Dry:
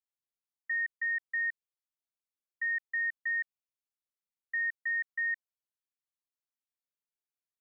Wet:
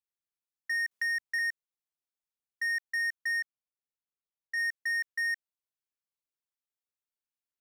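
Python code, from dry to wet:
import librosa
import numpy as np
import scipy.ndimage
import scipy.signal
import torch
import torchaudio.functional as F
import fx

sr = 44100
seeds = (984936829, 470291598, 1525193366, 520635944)

y = fx.lowpass(x, sr, hz=1800.0, slope=6, at=(3.39, 4.56), fade=0.02)
y = fx.leveller(y, sr, passes=2)
y = fx.band_squash(y, sr, depth_pct=40, at=(0.91, 1.39))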